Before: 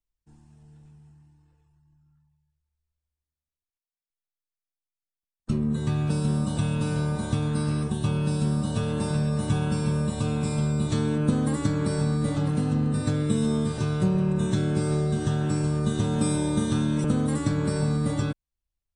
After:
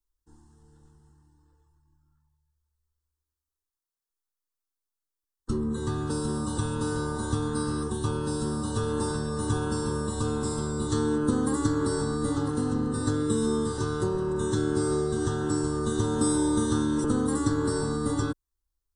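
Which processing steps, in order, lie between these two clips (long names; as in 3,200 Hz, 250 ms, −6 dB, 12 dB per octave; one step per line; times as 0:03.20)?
phaser with its sweep stopped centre 640 Hz, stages 6
level +4 dB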